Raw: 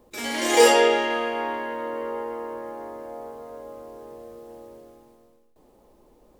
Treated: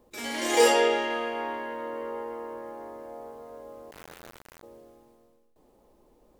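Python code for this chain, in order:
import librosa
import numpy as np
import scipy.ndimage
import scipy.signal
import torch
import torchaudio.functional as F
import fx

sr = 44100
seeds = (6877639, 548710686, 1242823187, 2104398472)

y = fx.quant_dither(x, sr, seeds[0], bits=6, dither='none', at=(3.91, 4.63))
y = F.gain(torch.from_numpy(y), -4.5).numpy()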